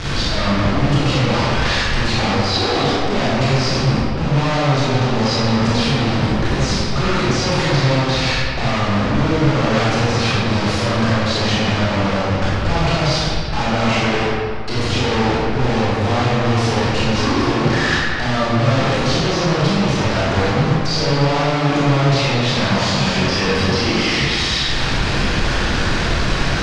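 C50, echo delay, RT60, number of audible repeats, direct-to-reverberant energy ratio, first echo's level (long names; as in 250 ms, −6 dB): −5.0 dB, no echo audible, 2.3 s, no echo audible, −9.0 dB, no echo audible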